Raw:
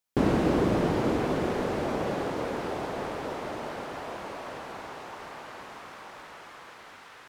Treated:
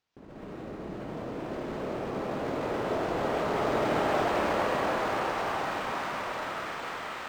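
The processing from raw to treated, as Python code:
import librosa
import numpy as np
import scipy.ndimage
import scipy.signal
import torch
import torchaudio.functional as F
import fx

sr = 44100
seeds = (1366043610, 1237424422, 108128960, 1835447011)

y = fx.over_compress(x, sr, threshold_db=-37.0, ratio=-1.0)
y = fx.rev_freeverb(y, sr, rt60_s=2.4, hf_ratio=1.0, predelay_ms=90, drr_db=-9.0)
y = np.interp(np.arange(len(y)), np.arange(len(y))[::4], y[::4])
y = y * librosa.db_to_amplitude(-4.0)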